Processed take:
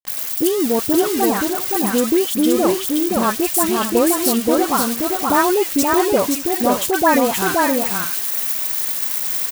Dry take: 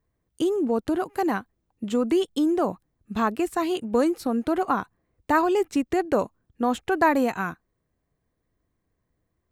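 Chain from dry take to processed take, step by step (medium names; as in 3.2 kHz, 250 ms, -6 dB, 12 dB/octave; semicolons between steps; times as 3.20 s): zero-crossing glitches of -18.5 dBFS; peaking EQ 570 Hz +2.5 dB 0.24 oct; in parallel at -2.5 dB: gain riding 2 s; on the sum: phase dispersion highs, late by 79 ms, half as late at 1.5 kHz; word length cut 6-bit, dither none; multi-tap echo 524/601 ms -3/-14.5 dB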